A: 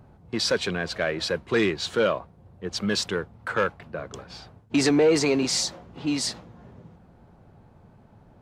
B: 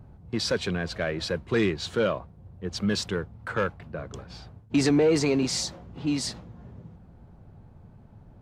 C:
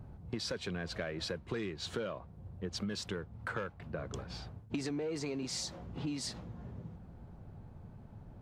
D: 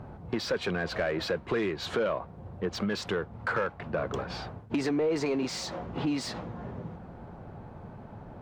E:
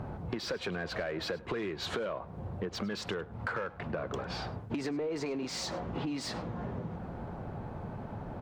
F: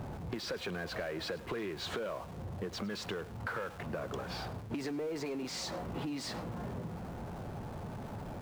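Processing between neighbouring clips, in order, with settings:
low shelf 190 Hz +11 dB; gain -4 dB
compressor 8:1, threshold -34 dBFS, peak gain reduction 16 dB; gain -1 dB
overdrive pedal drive 17 dB, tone 1200 Hz, clips at -23.5 dBFS; gain +6.5 dB
compressor 4:1, threshold -39 dBFS, peak gain reduction 12 dB; echo 0.102 s -20.5 dB; gain +4.5 dB
zero-crossing step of -43.5 dBFS; gain -4 dB

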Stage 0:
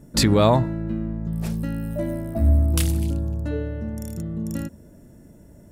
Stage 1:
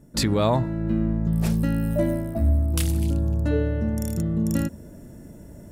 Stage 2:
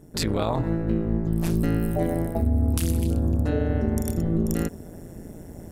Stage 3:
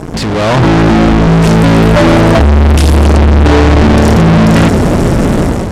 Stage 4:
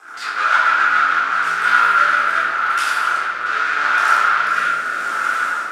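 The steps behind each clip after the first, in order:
vocal rider within 5 dB 0.5 s
bell 12000 Hz +2.5 dB 0.51 oct; limiter -18.5 dBFS, peak gain reduction 9.5 dB; AM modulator 170 Hz, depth 85%; gain +6.5 dB
fuzz box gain 48 dB, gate -50 dBFS; air absorption 71 m; AGC gain up to 11.5 dB
resonant high-pass 1400 Hz, resonance Q 12; rotary speaker horn 7 Hz, later 0.8 Hz, at 0.87; shoebox room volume 470 m³, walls mixed, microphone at 3.8 m; gain -16 dB

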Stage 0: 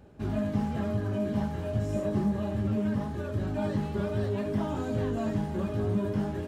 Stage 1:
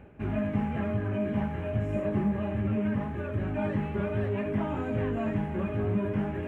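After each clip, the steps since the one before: resonant high shelf 3300 Hz -11 dB, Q 3; reverse; upward compressor, threshold -33 dBFS; reverse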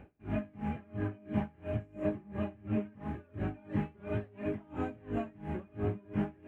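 small resonant body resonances 310/750/2400 Hz, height 7 dB, ringing for 90 ms; dB-linear tremolo 2.9 Hz, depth 28 dB; gain -1.5 dB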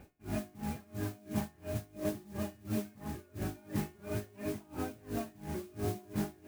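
resonator 360 Hz, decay 0.45 s, harmonics all, mix 70%; modulation noise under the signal 15 dB; gain +7.5 dB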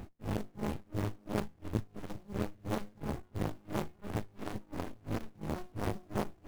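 reverb removal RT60 0.71 s; tube stage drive 36 dB, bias 0.5; running maximum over 65 samples; gain +13.5 dB

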